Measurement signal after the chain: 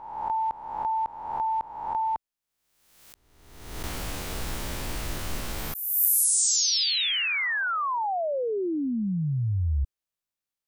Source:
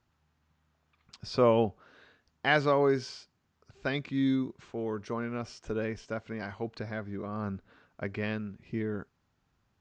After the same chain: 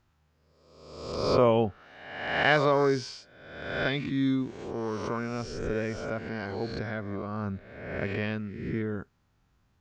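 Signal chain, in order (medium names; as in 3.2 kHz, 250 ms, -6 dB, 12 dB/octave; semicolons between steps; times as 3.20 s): reverse spectral sustain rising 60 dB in 1.08 s; bass shelf 90 Hz +7 dB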